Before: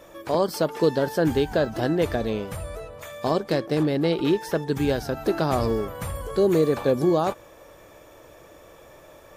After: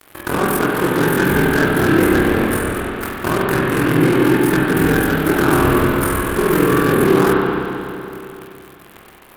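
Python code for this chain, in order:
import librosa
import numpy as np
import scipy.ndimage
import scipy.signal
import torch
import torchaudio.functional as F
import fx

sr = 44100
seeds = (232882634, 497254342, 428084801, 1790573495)

y = fx.bin_compress(x, sr, power=0.6)
y = fx.curve_eq(y, sr, hz=(360.0, 580.0, 1500.0, 4800.0, 9800.0), db=(0, -13, 9, -21, 12))
y = fx.fuzz(y, sr, gain_db=20.0, gate_db=-29.0)
y = y * np.sin(2.0 * np.pi * 21.0 * np.arange(len(y)) / sr)
y = fx.rev_spring(y, sr, rt60_s=2.9, pass_ms=(31, 44), chirp_ms=70, drr_db=-3.5)
y = y * librosa.db_to_amplitude(2.5)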